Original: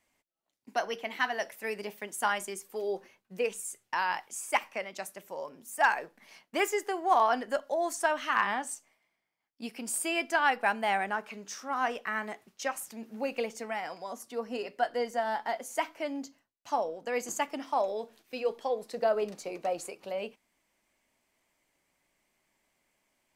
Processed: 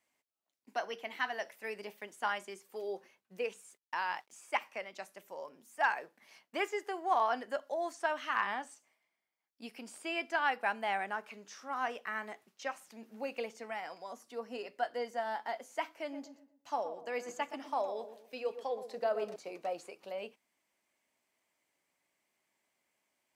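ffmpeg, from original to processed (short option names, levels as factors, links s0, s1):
-filter_complex "[0:a]asettb=1/sr,asplit=3[s0][s1][s2];[s0]atrim=end=3.614[s3];[s1]atrim=start=3.61:end=4.42,asetpts=PTS-STARTPTS,afade=t=in:d=0.004:c=qsin,afade=t=out:st=0.806:d=0.004:c=qsin,aeval=exprs='sgn(val(0))*max(abs(val(0))-0.00119,0)':c=same[s4];[s2]atrim=start=4.416[s5];[s3][s4]acrossfade=d=0.004:c1=hsin:c2=qsin[s6];[s6][s5]acrossfade=d=0.004:c1=qsin:c2=hsin,asettb=1/sr,asplit=3[s7][s8][s9];[s7]atrim=end=15.934[s10];[s8]atrim=start=15.93:end=19.36,asetpts=PTS-STARTPTS,afade=t=in:d=0.004:c=qsin,afade=t=out:st=3.426:d=0.004:c=qsin,asplit=2[s11][s12];[s12]adelay=121,lowpass=f=1300:p=1,volume=0.316,asplit=2[s13][s14];[s14]adelay=121,lowpass=f=1300:p=1,volume=0.38,asplit=2[s15][s16];[s16]adelay=121,lowpass=f=1300:p=1,volume=0.38,asplit=2[s17][s18];[s18]adelay=121,lowpass=f=1300:p=1,volume=0.38[s19];[s11][s13][s15][s17][s19]amix=inputs=5:normalize=0,atrim=end_sample=151263[s20];[s9]atrim=start=19.356[s21];[s10][s20]acrossfade=d=0.004:c1=hsin:c2=qsin[s22];[s22][s21]acrossfade=d=0.004:c1=qsin:c2=hsin,acrossover=split=5200[s23][s24];[s24]acompressor=threshold=0.00178:ratio=4:attack=1:release=60[s25];[s23][s25]amix=inputs=2:normalize=0,highpass=53,lowshelf=f=150:g=-11,volume=0.562"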